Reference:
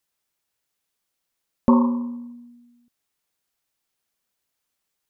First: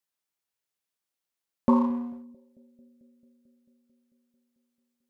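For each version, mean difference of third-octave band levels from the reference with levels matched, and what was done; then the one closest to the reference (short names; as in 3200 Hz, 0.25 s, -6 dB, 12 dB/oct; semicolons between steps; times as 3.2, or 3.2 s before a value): 2.5 dB: low shelf 72 Hz -9 dB; analogue delay 0.221 s, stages 1024, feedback 76%, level -23.5 dB; in parallel at -3 dB: crossover distortion -34 dBFS; on the sum: gain -8.5 dB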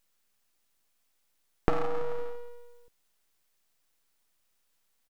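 14.5 dB: on a send: feedback echo 0.168 s, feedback 43%, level -22.5 dB; on the sum: compressor 16:1, threshold -28 dBFS, peak gain reduction 17.5 dB; full-wave rectifier; gain +6.5 dB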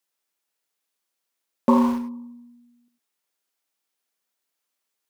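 4.0 dB: HPF 240 Hz 12 dB/oct; in parallel at -7 dB: sample gate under -23.5 dBFS; on the sum: non-linear reverb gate 0.12 s rising, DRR 9 dB; gain -2 dB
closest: first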